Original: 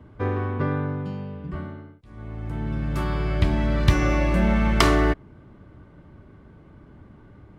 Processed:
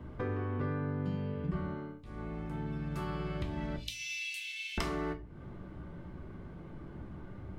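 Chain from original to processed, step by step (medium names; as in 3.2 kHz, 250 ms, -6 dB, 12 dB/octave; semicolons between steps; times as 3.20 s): 3.76–4.78 s: steep high-pass 2.6 kHz 48 dB/octave; compression 8:1, threshold -34 dBFS, peak gain reduction 20.5 dB; simulated room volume 180 m³, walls furnished, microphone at 0.88 m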